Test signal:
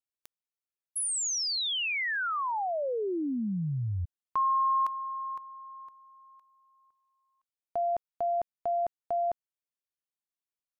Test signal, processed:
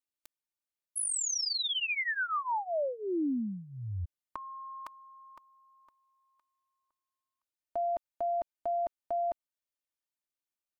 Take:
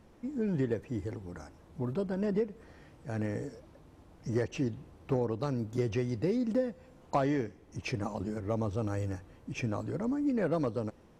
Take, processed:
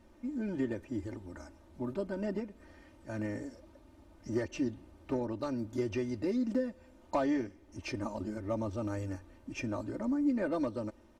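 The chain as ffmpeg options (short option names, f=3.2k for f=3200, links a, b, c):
-af "aecho=1:1:3.3:0.83,volume=-4dB"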